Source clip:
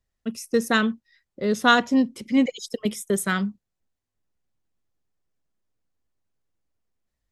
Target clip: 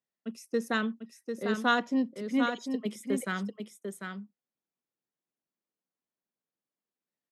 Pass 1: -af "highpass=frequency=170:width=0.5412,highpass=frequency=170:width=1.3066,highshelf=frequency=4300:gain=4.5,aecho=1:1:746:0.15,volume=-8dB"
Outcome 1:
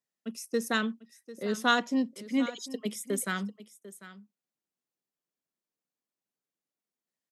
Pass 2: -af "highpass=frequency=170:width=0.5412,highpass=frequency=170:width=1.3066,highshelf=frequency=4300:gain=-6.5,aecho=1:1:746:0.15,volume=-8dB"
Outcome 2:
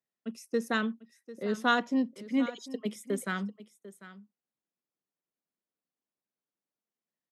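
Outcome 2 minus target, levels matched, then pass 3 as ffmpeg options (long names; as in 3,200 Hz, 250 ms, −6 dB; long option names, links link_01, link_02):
echo-to-direct −10 dB
-af "highpass=frequency=170:width=0.5412,highpass=frequency=170:width=1.3066,highshelf=frequency=4300:gain=-6.5,aecho=1:1:746:0.473,volume=-8dB"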